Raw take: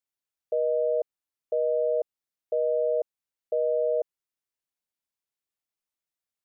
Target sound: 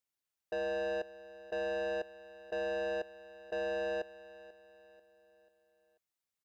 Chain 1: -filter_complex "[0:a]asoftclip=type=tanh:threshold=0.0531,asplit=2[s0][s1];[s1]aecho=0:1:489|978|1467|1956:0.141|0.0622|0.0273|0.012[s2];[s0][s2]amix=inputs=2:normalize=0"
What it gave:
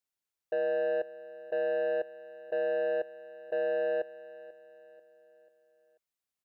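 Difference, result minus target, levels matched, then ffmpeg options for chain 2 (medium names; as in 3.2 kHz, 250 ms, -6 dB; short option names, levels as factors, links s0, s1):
saturation: distortion -6 dB
-filter_complex "[0:a]asoftclip=type=tanh:threshold=0.0224,asplit=2[s0][s1];[s1]aecho=0:1:489|978|1467|1956:0.141|0.0622|0.0273|0.012[s2];[s0][s2]amix=inputs=2:normalize=0"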